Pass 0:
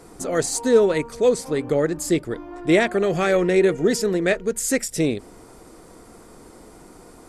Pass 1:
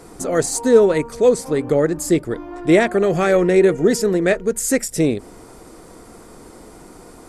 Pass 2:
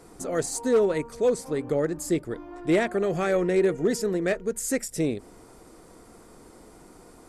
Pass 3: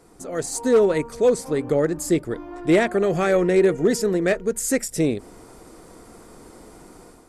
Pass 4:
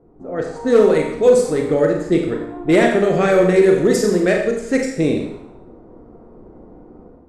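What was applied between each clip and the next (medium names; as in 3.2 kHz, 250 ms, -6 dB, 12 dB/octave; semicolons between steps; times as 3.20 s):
dynamic bell 3.4 kHz, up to -5 dB, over -40 dBFS, Q 0.79; trim +4 dB
hard clipper -6.5 dBFS, distortion -23 dB; trim -8.5 dB
level rider gain up to 8 dB; trim -3 dB
level-controlled noise filter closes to 540 Hz, open at -15 dBFS; Schroeder reverb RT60 0.73 s, combs from 30 ms, DRR 1.5 dB; trim +2.5 dB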